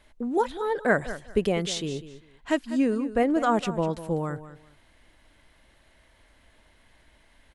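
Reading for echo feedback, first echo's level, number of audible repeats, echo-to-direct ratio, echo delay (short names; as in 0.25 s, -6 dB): 21%, -14.0 dB, 2, -14.0 dB, 0.198 s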